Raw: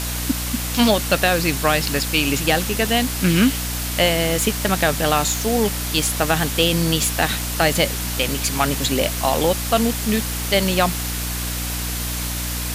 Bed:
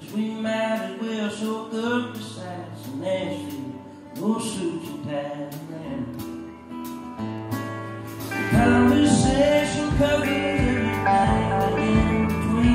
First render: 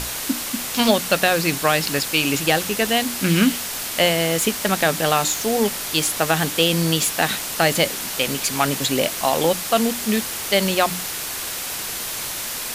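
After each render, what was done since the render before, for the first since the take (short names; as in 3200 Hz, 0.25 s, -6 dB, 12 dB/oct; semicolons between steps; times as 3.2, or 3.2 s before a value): notches 60/120/180/240/300 Hz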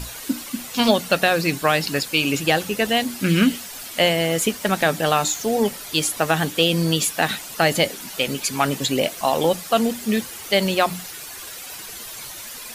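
denoiser 11 dB, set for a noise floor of -29 dBFS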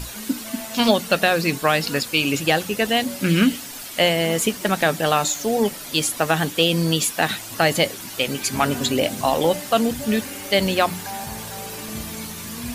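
add bed -14 dB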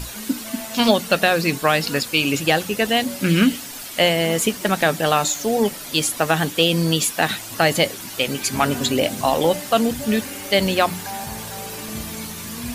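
gain +1 dB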